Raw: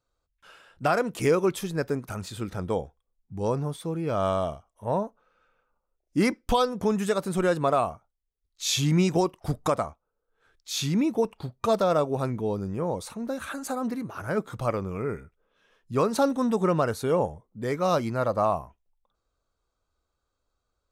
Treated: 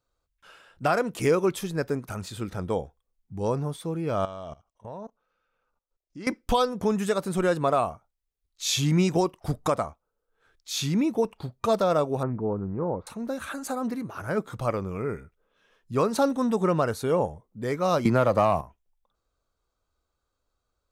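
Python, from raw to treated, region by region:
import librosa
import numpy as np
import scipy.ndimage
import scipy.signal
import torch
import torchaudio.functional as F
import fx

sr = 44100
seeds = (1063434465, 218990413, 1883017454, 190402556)

y = fx.chain(x, sr, fx.lowpass(hz=6400.0, slope=24),
    fx.high_shelf(hz=4400.0, db=7.5),
    fx.level_steps(step_db=19), at=(4.25, 6.27))
y = fx.chain(y, sr, fx.lowpass(hz=1600.0, slope=24),
    fx.doppler_dist(depth_ms=0.16), at=(12.23, 13.07))
y = fx.chain(y, sr, fx.leveller(passes=1),
    fx.band_squash(depth_pct=100), at=(18.05, 18.61))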